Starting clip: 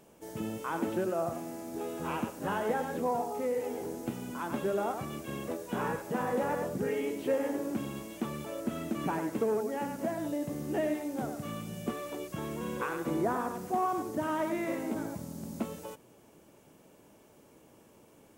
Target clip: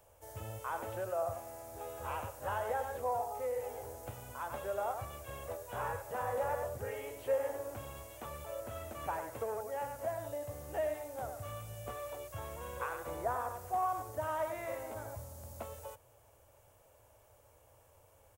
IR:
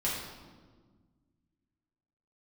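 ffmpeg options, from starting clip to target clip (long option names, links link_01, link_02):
-filter_complex "[0:a]firequalizer=gain_entry='entry(100,0);entry(170,-29);entry(360,-23);entry(530,-7);entry(2300,-12);entry(11000,-16)':delay=0.05:min_phase=1,acrossover=split=310|580|6100[link_01][link_02][link_03][link_04];[link_04]crystalizer=i=1.5:c=0[link_05];[link_01][link_02][link_03][link_05]amix=inputs=4:normalize=0,volume=5.5dB"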